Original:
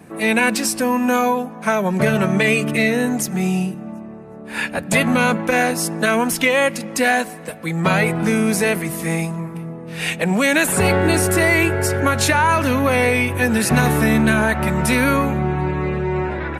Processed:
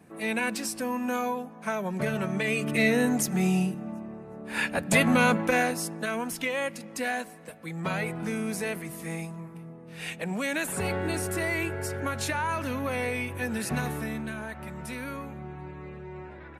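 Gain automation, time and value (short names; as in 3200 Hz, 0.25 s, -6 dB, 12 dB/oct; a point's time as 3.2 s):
2.46 s -12 dB
2.88 s -5 dB
5.42 s -5 dB
6.04 s -13.5 dB
13.74 s -13.5 dB
14.3 s -20 dB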